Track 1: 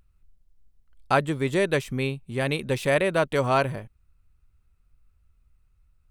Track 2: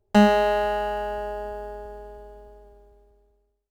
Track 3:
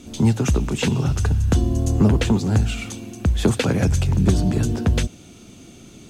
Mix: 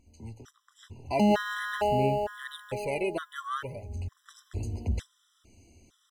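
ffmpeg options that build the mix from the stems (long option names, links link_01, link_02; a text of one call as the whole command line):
ffmpeg -i stem1.wav -i stem2.wav -i stem3.wav -filter_complex "[0:a]aphaser=in_gain=1:out_gain=1:delay=3:decay=0.62:speed=0.46:type=sinusoidal,volume=-9dB,asplit=2[link_01][link_02];[1:a]highpass=160,bass=frequency=250:gain=5,treble=frequency=4000:gain=3,adelay=1050,volume=1dB[link_03];[2:a]lowshelf=frequency=110:width_type=q:width=3:gain=9.5,bandreject=frequency=51.57:width_type=h:width=4,bandreject=frequency=103.14:width_type=h:width=4,bandreject=frequency=154.71:width_type=h:width=4,bandreject=frequency=206.28:width_type=h:width=4,bandreject=frequency=257.85:width_type=h:width=4,bandreject=frequency=309.42:width_type=h:width=4,bandreject=frequency=360.99:width_type=h:width=4,bandreject=frequency=412.56:width_type=h:width=4,bandreject=frequency=464.13:width_type=h:width=4,bandreject=frequency=515.7:width_type=h:width=4,bandreject=frequency=567.27:width_type=h:width=4,bandreject=frequency=618.84:width_type=h:width=4,bandreject=frequency=670.41:width_type=h:width=4,bandreject=frequency=721.98:width_type=h:width=4,bandreject=frequency=773.55:width_type=h:width=4,bandreject=frequency=825.12:width_type=h:width=4,bandreject=frequency=876.69:width_type=h:width=4,bandreject=frequency=928.26:width_type=h:width=4,bandreject=frequency=979.83:width_type=h:width=4,bandreject=frequency=1031.4:width_type=h:width=4,asoftclip=type=tanh:threshold=-2.5dB,volume=-13.5dB,afade=type=in:start_time=3.89:duration=0.51:silence=0.298538[link_04];[link_02]apad=whole_len=268757[link_05];[link_04][link_05]sidechaincompress=threshold=-38dB:ratio=8:attack=16:release=338[link_06];[link_01][link_03]amix=inputs=2:normalize=0,lowshelf=frequency=210:gain=5,alimiter=limit=-13dB:level=0:latency=1,volume=0dB[link_07];[link_06][link_07]amix=inputs=2:normalize=0,lowshelf=frequency=85:gain=-10.5,afftfilt=real='re*gt(sin(2*PI*1.1*pts/sr)*(1-2*mod(floor(b*sr/1024/1000),2)),0)':imag='im*gt(sin(2*PI*1.1*pts/sr)*(1-2*mod(floor(b*sr/1024/1000),2)),0)':win_size=1024:overlap=0.75" out.wav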